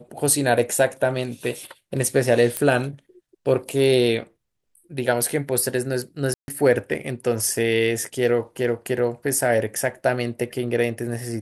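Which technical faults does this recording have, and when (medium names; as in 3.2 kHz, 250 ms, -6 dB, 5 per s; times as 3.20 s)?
2.57 s: pop -7 dBFS
6.34–6.48 s: dropout 141 ms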